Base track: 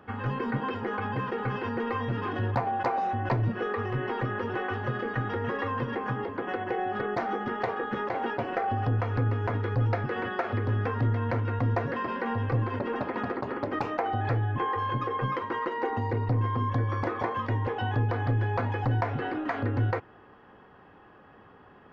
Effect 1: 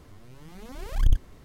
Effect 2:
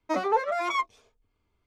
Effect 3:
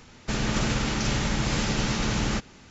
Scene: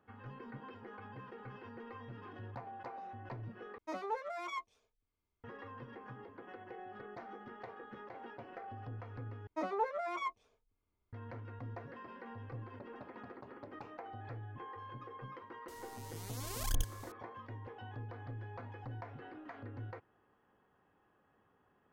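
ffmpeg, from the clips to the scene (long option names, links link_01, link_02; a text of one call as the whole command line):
ffmpeg -i bed.wav -i cue0.wav -i cue1.wav -filter_complex "[2:a]asplit=2[link_01][link_02];[0:a]volume=-19dB[link_03];[link_02]highshelf=frequency=2700:gain=-9[link_04];[1:a]bass=frequency=250:gain=-10,treble=frequency=4000:gain=14[link_05];[link_03]asplit=3[link_06][link_07][link_08];[link_06]atrim=end=3.784[link_09];[link_01]atrim=end=1.66,asetpts=PTS-STARTPTS,volume=-14dB[link_10];[link_07]atrim=start=5.436:end=9.474[link_11];[link_04]atrim=end=1.66,asetpts=PTS-STARTPTS,volume=-9.5dB[link_12];[link_08]atrim=start=11.126[link_13];[link_05]atrim=end=1.44,asetpts=PTS-STARTPTS,volume=-4dB,afade=type=in:duration=0.004:curve=hsin,afade=type=out:start_time=1.436:duration=0.004:curve=hsin,adelay=15680[link_14];[link_09][link_10]acrossfade=duration=0.004:curve1=hsin:curve2=hsin[link_15];[link_15][link_11]acrossfade=duration=0.004:curve1=hsin:curve2=hsin[link_16];[link_16][link_12]acrossfade=duration=0.004:curve1=hsin:curve2=hsin[link_17];[link_17][link_13]acrossfade=duration=0.004:curve1=hsin:curve2=hsin[link_18];[link_18][link_14]amix=inputs=2:normalize=0" out.wav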